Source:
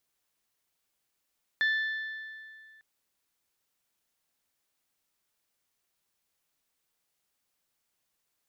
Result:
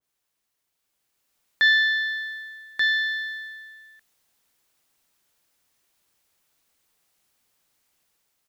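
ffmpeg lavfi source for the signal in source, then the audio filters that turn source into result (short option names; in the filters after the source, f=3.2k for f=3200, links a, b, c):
-f lavfi -i "aevalsrc='0.075*pow(10,-3*t/2.24)*sin(2*PI*1760*t)+0.0211*pow(10,-3*t/1.819)*sin(2*PI*3520*t)+0.00596*pow(10,-3*t/1.723)*sin(2*PI*4224*t)+0.00168*pow(10,-3*t/1.611)*sin(2*PI*5280*t)+0.000473*pow(10,-3*t/1.478)*sin(2*PI*7040*t)':d=1.2:s=44100"
-filter_complex "[0:a]dynaudnorm=f=730:g=3:m=7.5dB,asplit=2[a][b];[b]aecho=0:1:1184:0.631[c];[a][c]amix=inputs=2:normalize=0,adynamicequalizer=threshold=0.0141:dfrequency=2000:dqfactor=0.7:tfrequency=2000:tqfactor=0.7:attack=5:release=100:ratio=0.375:range=4:mode=boostabove:tftype=highshelf"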